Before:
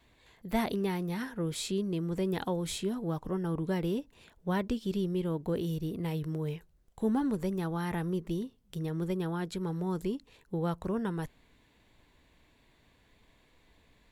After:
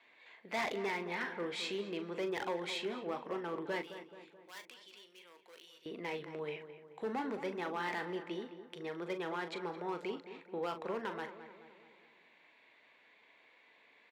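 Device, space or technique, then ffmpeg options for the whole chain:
megaphone: -filter_complex "[0:a]highpass=480,lowpass=3.5k,equalizer=f=2.2k:t=o:w=0.56:g=7.5,asoftclip=type=hard:threshold=-32.5dB,highpass=f=110:p=1,asplit=2[a][b];[b]adelay=40,volume=-9.5dB[c];[a][c]amix=inputs=2:normalize=0,asettb=1/sr,asplit=3[d][e][f];[d]atrim=end=3.824[g];[e]atrim=start=3.82:end=5.86,asetpts=PTS-STARTPTS,afade=t=in:d=0.004:c=qsin,afade=t=out:st=2.036:d=0.004:c=qsin,aderivative[h];[f]atrim=start=5.856[i];[g][h]acrossfade=d=0.004:c1=hsin:c2=qsin[j];[j][i]acrossfade=d=0.004:c1=qsin:c2=hsin,asplit=2[k][l];[l]adelay=215,lowpass=f=2k:p=1,volume=-11dB,asplit=2[m][n];[n]adelay=215,lowpass=f=2k:p=1,volume=0.55,asplit=2[o][p];[p]adelay=215,lowpass=f=2k:p=1,volume=0.55,asplit=2[q][r];[r]adelay=215,lowpass=f=2k:p=1,volume=0.55,asplit=2[s][t];[t]adelay=215,lowpass=f=2k:p=1,volume=0.55,asplit=2[u][v];[v]adelay=215,lowpass=f=2k:p=1,volume=0.55[w];[k][m][o][q][s][u][w]amix=inputs=7:normalize=0,volume=1dB"

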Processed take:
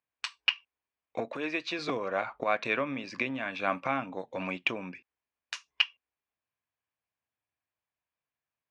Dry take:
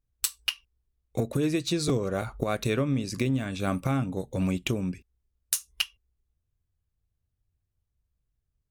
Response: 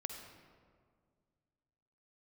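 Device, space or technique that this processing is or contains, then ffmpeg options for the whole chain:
phone earpiece: -filter_complex "[0:a]asettb=1/sr,asplit=3[a][b][c];[a]atrim=end=1.284[d];[b]atrim=start=1.28:end=1.79,asetpts=PTS-STARTPTS,afade=t=in:d=0.004:c=qsin,afade=t=out:st=0.506:d=0.004:c=qsin,highpass=f=320:p=1[e];[c]atrim=start=1.786[f];[d][e]acrossfade=d=0.004:c1=hsin:c2=qsin[g];[g][f]acrossfade=d=0.004:c1=qsin:c2=hsin,highpass=390,equalizer=f=400:t=q:w=4:g=-7,equalizer=f=700:t=q:w=4:g=3,equalizer=f=1k:t=q:w=4:g=7,equalizer=f=1.7k:t=q:w=4:g=5,equalizer=f=2.4k:t=q:w=4:g=7,equalizer=f=3.9k:t=q:w=4:g=-5,lowpass=f=4.3k:w=0.5412,lowpass=f=4.3k:w=1.3066"

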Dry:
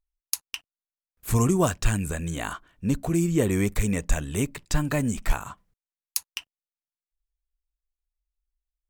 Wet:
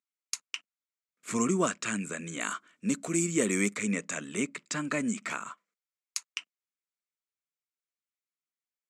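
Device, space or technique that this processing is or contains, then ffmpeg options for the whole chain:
television speaker: -filter_complex "[0:a]highpass=f=200:w=0.5412,highpass=f=200:w=1.3066,equalizer=f=210:t=q:w=4:g=5,equalizer=f=810:t=q:w=4:g=-9,equalizer=f=1.3k:t=q:w=4:g=7,equalizer=f=2.2k:t=q:w=4:g=8,equalizer=f=7.3k:t=q:w=4:g=6,lowpass=f=8.3k:w=0.5412,lowpass=f=8.3k:w=1.3066,asettb=1/sr,asplit=3[a][b][c];[a]atrim=end=2.404[d];[b]atrim=start=2.4:end=3.74,asetpts=PTS-STARTPTS,afade=t=in:d=0.004:c=qsin,afade=t=out:st=1.336:d=0.004:c=qsin,aemphasis=mode=production:type=50kf[e];[c]atrim=start=3.736[f];[d][e]acrossfade=d=0.004:c1=hsin:c2=qsin[g];[g][f]acrossfade=d=0.004:c1=qsin:c2=hsin,asettb=1/sr,asplit=3[h][i][j];[h]atrim=end=5.494[k];[i]atrim=start=5.49:end=6.31,asetpts=PTS-STARTPTS,afade=t=in:d=0.004:c=qsin,afade=t=out:st=0.816:d=0.004:c=qsin,highpass=460[l];[j]atrim=start=6.306[m];[k][l]acrossfade=d=0.004:c1=hsin:c2=qsin[n];[n][m]acrossfade=d=0.004:c1=qsin:c2=hsin,volume=-4.5dB"

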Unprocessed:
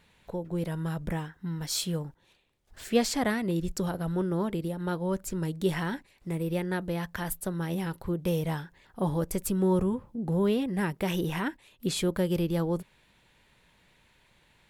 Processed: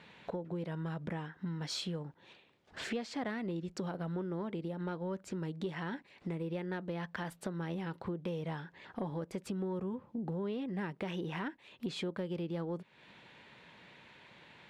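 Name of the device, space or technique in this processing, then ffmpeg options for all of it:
AM radio: -af "highpass=150,lowpass=3.8k,acompressor=threshold=-45dB:ratio=5,asoftclip=type=tanh:threshold=-32.5dB,volume=8dB"

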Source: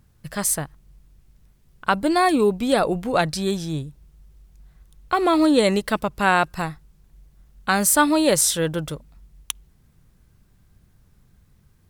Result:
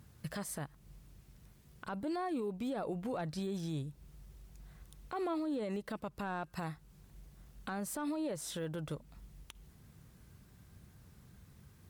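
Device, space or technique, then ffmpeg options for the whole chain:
podcast mastering chain: -af "highpass=66,deesser=0.95,acompressor=threshold=-40dB:ratio=2.5,alimiter=level_in=7.5dB:limit=-24dB:level=0:latency=1:release=60,volume=-7.5dB,volume=1.5dB" -ar 48000 -c:a libmp3lame -b:a 96k

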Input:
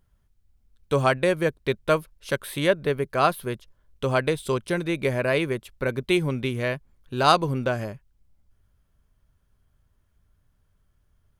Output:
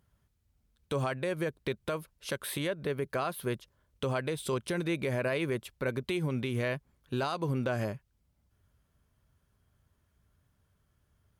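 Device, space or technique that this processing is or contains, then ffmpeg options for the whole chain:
podcast mastering chain: -af "highpass=67,acompressor=threshold=-23dB:ratio=3,alimiter=limit=-21.5dB:level=0:latency=1:release=84" -ar 44100 -c:a libmp3lame -b:a 112k

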